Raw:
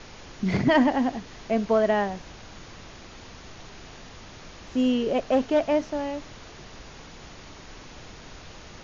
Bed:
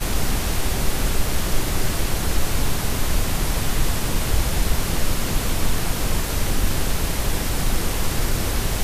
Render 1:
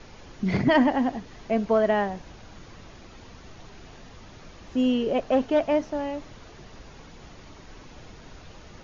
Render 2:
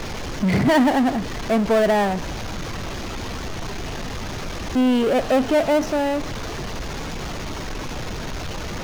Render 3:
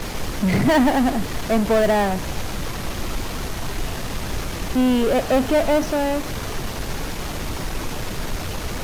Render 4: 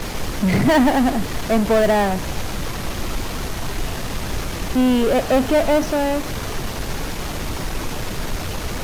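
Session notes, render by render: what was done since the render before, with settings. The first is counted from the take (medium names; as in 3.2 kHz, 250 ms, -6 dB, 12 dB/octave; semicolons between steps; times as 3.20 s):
noise reduction 6 dB, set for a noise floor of -45 dBFS
power-law waveshaper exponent 0.5
add bed -9.5 dB
trim +1.5 dB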